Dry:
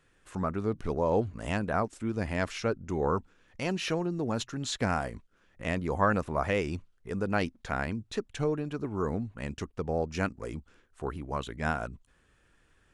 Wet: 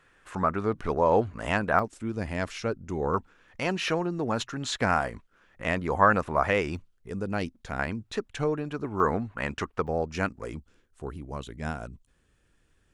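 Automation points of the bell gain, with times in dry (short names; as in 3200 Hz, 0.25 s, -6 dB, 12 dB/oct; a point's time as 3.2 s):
bell 1300 Hz 2.6 oct
+9 dB
from 1.79 s -0.5 dB
from 3.14 s +7 dB
from 6.77 s -3.5 dB
from 7.79 s +5 dB
from 9 s +13.5 dB
from 9.87 s +3.5 dB
from 10.58 s -6 dB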